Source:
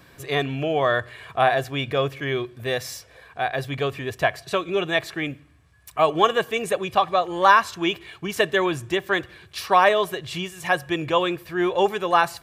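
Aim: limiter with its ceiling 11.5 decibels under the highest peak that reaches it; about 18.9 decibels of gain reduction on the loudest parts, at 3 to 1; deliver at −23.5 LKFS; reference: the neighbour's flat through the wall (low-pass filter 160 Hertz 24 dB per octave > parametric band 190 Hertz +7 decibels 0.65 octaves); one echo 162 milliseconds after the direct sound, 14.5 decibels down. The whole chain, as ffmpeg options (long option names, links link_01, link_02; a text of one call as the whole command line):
ffmpeg -i in.wav -af "acompressor=threshold=-37dB:ratio=3,alimiter=level_in=6.5dB:limit=-24dB:level=0:latency=1,volume=-6.5dB,lowpass=frequency=160:width=0.5412,lowpass=frequency=160:width=1.3066,equalizer=frequency=190:width_type=o:width=0.65:gain=7,aecho=1:1:162:0.188,volume=25.5dB" out.wav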